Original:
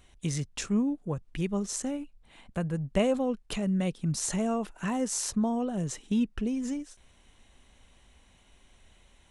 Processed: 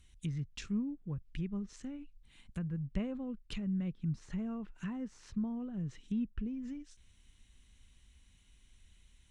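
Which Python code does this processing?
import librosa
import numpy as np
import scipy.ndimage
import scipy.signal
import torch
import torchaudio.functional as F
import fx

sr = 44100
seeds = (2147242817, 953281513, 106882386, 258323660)

y = fx.env_lowpass_down(x, sr, base_hz=1500.0, full_db=-27.5)
y = fx.tone_stack(y, sr, knobs='6-0-2')
y = y * librosa.db_to_amplitude(10.5)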